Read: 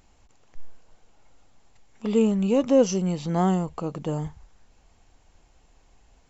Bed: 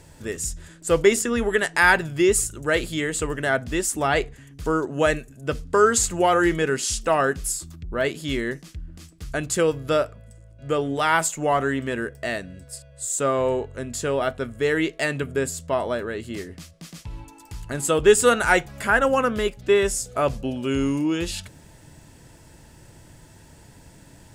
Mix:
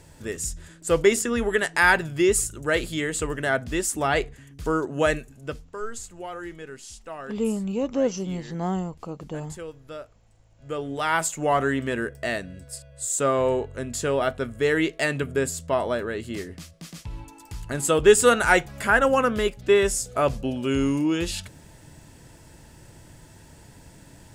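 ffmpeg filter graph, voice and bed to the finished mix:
-filter_complex "[0:a]adelay=5250,volume=-5dB[a];[1:a]volume=15.5dB,afade=t=out:st=5.23:d=0.5:silence=0.16788,afade=t=in:st=10.3:d=1.33:silence=0.141254[b];[a][b]amix=inputs=2:normalize=0"

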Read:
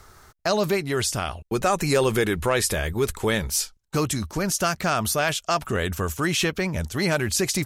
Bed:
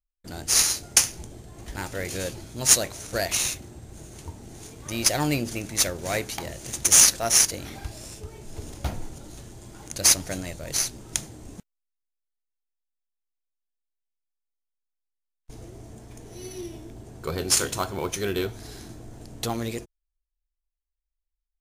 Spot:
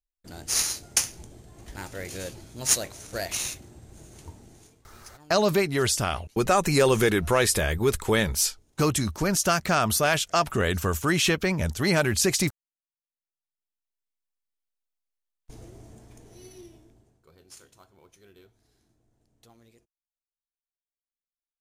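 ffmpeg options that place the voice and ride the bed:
-filter_complex "[0:a]adelay=4850,volume=0.5dB[a];[1:a]volume=22dB,afade=t=out:st=4.32:d=0.56:silence=0.0668344,afade=t=in:st=13.05:d=1.3:silence=0.0446684,afade=t=out:st=15.3:d=1.92:silence=0.0473151[b];[a][b]amix=inputs=2:normalize=0"

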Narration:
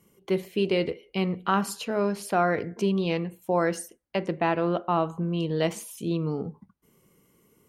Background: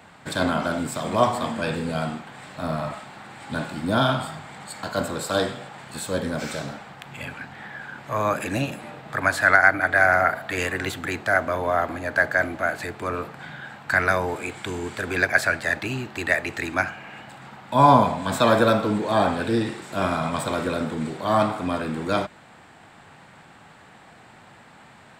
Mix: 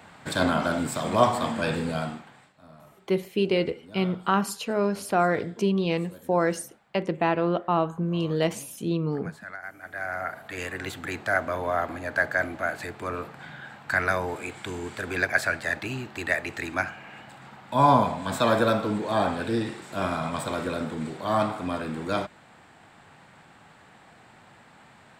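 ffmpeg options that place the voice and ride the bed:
-filter_complex "[0:a]adelay=2800,volume=1dB[a];[1:a]volume=19dB,afade=t=out:st=1.8:d=0.73:silence=0.0707946,afade=t=in:st=9.76:d=1.47:silence=0.105925[b];[a][b]amix=inputs=2:normalize=0"

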